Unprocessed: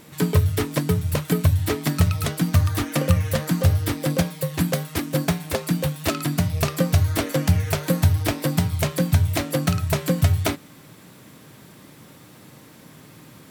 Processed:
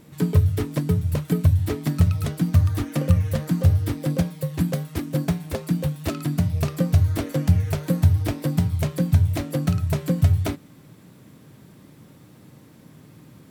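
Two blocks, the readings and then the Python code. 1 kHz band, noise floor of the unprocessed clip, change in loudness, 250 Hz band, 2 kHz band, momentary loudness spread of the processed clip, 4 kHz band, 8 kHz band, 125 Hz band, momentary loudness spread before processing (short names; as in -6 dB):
-6.5 dB, -48 dBFS, -0.5 dB, -0.5 dB, -8.0 dB, 6 LU, -8.5 dB, -8.5 dB, +1.0 dB, 4 LU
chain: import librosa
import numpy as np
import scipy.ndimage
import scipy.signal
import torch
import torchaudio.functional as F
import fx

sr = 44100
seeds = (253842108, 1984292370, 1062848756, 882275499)

y = fx.low_shelf(x, sr, hz=450.0, db=10.0)
y = y * 10.0 ** (-8.5 / 20.0)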